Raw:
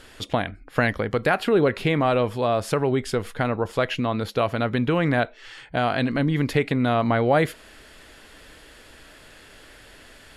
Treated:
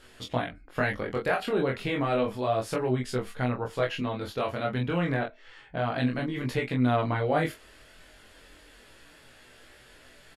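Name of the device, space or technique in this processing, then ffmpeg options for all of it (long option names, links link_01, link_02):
double-tracked vocal: -filter_complex "[0:a]asettb=1/sr,asplit=3[link_01][link_02][link_03];[link_01]atrim=end=5.144[link_04];[link_02]atrim=start=5.14:end=5.95,asetpts=PTS-STARTPTS,afade=type=in:duration=0.004:curve=qsin,afade=type=out:start_time=0.806:duration=0.004:curve=qsin,equalizer=frequency=11000:width_type=o:width=2.6:gain=-10.5[link_05];[link_03]atrim=start=5.946[link_06];[link_04][link_05]acrossfade=duration=0.004:curve1=hsin:curve2=qsin[link_07];[link_07][link_06]acrossfade=duration=0.004:curve1=qsin:curve2=hsin,asplit=2[link_08][link_09];[link_09]adelay=24,volume=-3.5dB[link_10];[link_08][link_10]amix=inputs=2:normalize=0,flanger=delay=15.5:depth=7.2:speed=0.31,volume=-4.5dB"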